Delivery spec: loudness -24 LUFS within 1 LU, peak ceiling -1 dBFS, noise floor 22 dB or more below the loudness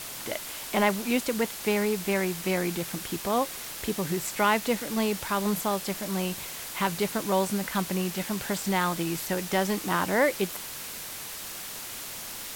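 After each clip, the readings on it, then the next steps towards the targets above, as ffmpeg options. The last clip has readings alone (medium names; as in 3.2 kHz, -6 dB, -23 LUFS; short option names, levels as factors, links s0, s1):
noise floor -39 dBFS; noise floor target -51 dBFS; loudness -28.5 LUFS; peak level -11.0 dBFS; loudness target -24.0 LUFS
-> -af "afftdn=nr=12:nf=-39"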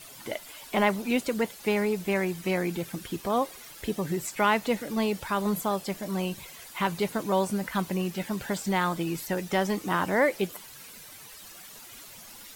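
noise floor -47 dBFS; noise floor target -51 dBFS
-> -af "afftdn=nr=6:nf=-47"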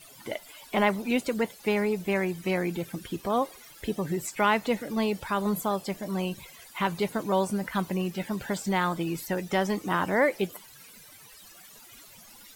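noise floor -51 dBFS; loudness -29.0 LUFS; peak level -11.5 dBFS; loudness target -24.0 LUFS
-> -af "volume=1.78"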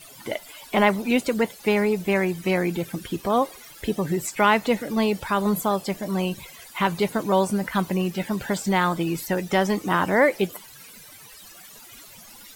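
loudness -24.0 LUFS; peak level -6.5 dBFS; noise floor -46 dBFS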